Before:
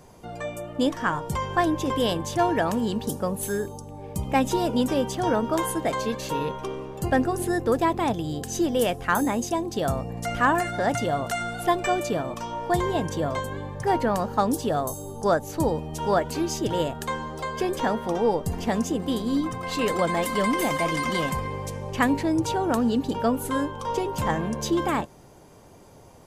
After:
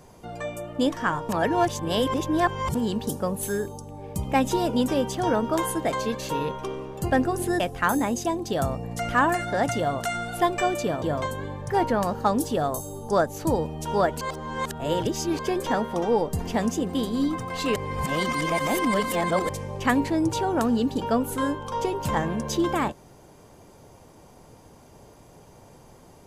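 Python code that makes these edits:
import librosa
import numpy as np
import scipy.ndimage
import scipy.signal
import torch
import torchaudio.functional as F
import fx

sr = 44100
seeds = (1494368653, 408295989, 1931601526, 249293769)

y = fx.edit(x, sr, fx.reverse_span(start_s=1.29, length_s=1.46),
    fx.cut(start_s=7.6, length_s=1.26),
    fx.cut(start_s=12.28, length_s=0.87),
    fx.reverse_span(start_s=16.34, length_s=1.18),
    fx.reverse_span(start_s=19.89, length_s=1.73), tone=tone)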